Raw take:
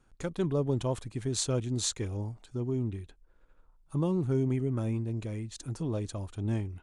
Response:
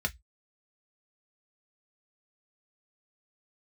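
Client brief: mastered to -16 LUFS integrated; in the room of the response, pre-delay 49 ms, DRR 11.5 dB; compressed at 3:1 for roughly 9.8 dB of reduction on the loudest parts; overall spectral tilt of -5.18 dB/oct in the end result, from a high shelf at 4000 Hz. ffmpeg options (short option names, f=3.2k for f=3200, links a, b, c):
-filter_complex "[0:a]highshelf=f=4k:g=8.5,acompressor=threshold=-35dB:ratio=3,asplit=2[a][b];[1:a]atrim=start_sample=2205,adelay=49[c];[b][c]afir=irnorm=-1:irlink=0,volume=-17.5dB[d];[a][d]amix=inputs=2:normalize=0,volume=21.5dB"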